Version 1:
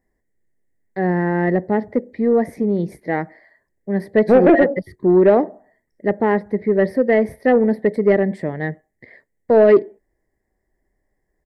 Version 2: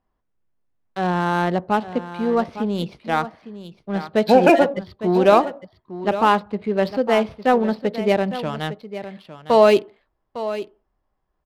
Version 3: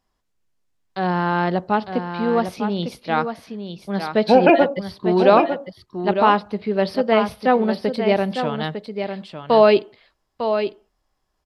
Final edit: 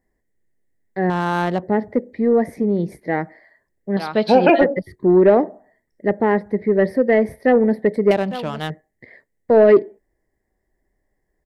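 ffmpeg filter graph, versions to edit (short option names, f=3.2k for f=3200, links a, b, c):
-filter_complex "[1:a]asplit=2[a][b];[0:a]asplit=4[c][d][e][f];[c]atrim=end=1.102[g];[a]atrim=start=1.098:end=1.632[h];[d]atrim=start=1.628:end=3.972[i];[2:a]atrim=start=3.968:end=4.612[j];[e]atrim=start=4.608:end=8.112[k];[b]atrim=start=8.108:end=8.702[l];[f]atrim=start=8.698[m];[g][h]acrossfade=d=0.004:c1=hsin:c2=hsin[n];[n][i]acrossfade=d=0.004:c1=hsin:c2=hsin[o];[o][j]acrossfade=d=0.004:c1=hsin:c2=hsin[p];[p][k]acrossfade=d=0.004:c1=hsin:c2=hsin[q];[q][l]acrossfade=d=0.004:c1=hsin:c2=hsin[r];[r][m]acrossfade=d=0.004:c1=hsin:c2=hsin"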